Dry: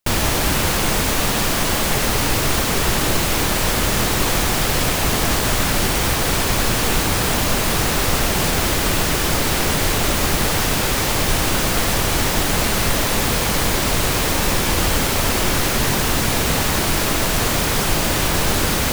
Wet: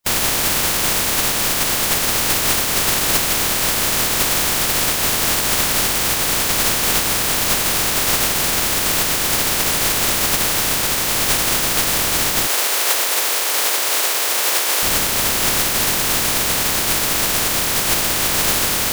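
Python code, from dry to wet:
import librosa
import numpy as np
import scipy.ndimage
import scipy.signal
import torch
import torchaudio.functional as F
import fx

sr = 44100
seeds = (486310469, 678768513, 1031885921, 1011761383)

y = fx.spec_flatten(x, sr, power=0.36)
y = fx.highpass(y, sr, hz=380.0, slope=24, at=(12.47, 14.83))
y = fx.quant_float(y, sr, bits=2)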